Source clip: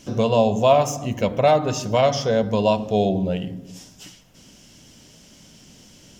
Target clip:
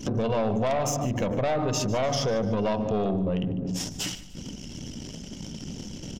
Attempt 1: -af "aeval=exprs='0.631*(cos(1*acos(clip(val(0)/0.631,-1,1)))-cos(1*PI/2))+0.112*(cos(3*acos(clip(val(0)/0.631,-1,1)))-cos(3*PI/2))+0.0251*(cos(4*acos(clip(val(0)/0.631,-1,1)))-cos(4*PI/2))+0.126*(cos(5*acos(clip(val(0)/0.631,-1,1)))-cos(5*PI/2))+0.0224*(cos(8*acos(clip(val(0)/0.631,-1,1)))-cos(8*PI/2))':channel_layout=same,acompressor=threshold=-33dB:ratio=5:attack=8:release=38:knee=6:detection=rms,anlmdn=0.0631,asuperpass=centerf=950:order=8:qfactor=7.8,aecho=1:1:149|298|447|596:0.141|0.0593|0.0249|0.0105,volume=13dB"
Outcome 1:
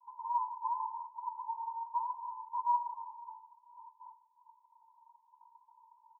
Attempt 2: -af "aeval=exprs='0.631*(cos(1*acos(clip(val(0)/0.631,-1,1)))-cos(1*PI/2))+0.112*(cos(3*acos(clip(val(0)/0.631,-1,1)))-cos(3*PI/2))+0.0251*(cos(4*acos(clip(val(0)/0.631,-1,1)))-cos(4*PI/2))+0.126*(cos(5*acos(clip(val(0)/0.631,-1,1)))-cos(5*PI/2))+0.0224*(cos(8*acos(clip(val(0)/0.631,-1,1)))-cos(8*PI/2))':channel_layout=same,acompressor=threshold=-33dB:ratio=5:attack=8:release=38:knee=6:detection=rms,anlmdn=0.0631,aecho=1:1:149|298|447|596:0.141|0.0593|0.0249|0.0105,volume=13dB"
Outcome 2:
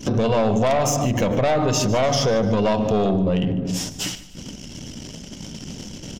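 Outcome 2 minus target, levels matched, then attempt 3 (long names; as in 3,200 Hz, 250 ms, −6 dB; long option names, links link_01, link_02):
downward compressor: peak gain reduction −6.5 dB
-af "aeval=exprs='0.631*(cos(1*acos(clip(val(0)/0.631,-1,1)))-cos(1*PI/2))+0.112*(cos(3*acos(clip(val(0)/0.631,-1,1)))-cos(3*PI/2))+0.0251*(cos(4*acos(clip(val(0)/0.631,-1,1)))-cos(4*PI/2))+0.126*(cos(5*acos(clip(val(0)/0.631,-1,1)))-cos(5*PI/2))+0.0224*(cos(8*acos(clip(val(0)/0.631,-1,1)))-cos(8*PI/2))':channel_layout=same,acompressor=threshold=-41dB:ratio=5:attack=8:release=38:knee=6:detection=rms,anlmdn=0.0631,aecho=1:1:149|298|447|596:0.141|0.0593|0.0249|0.0105,volume=13dB"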